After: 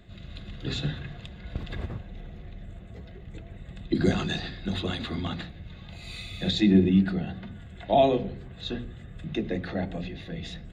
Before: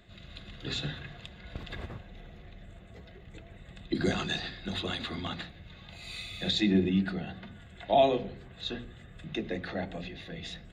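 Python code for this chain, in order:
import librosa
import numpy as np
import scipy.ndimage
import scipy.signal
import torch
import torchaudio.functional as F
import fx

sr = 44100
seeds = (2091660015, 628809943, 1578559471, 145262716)

y = fx.low_shelf(x, sr, hz=420.0, db=8.0)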